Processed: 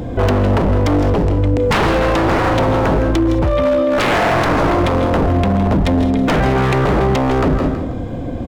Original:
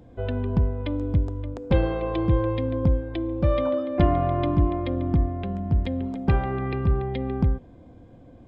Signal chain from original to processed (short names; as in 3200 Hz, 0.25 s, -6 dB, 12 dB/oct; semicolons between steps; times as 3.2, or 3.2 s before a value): 3.12–3.91 compressor 16:1, threshold -26 dBFS, peak gain reduction 11 dB; 5.75–6.55 bell 300 Hz -> 1200 Hz -12 dB 0.5 oct; wavefolder -25 dBFS; feedback echo 0.162 s, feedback 26%, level -12 dB; reverb, pre-delay 0.105 s, DRR 13 dB; maximiser +31.5 dB; gain -7 dB